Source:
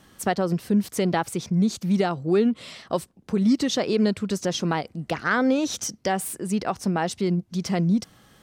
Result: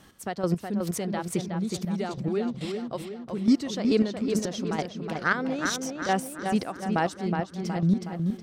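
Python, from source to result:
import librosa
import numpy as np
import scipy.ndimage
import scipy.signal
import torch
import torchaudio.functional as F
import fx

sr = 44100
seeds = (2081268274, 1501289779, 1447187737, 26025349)

y = fx.chopper(x, sr, hz=2.3, depth_pct=65, duty_pct=25)
y = fx.echo_filtered(y, sr, ms=368, feedback_pct=53, hz=3500.0, wet_db=-5.0)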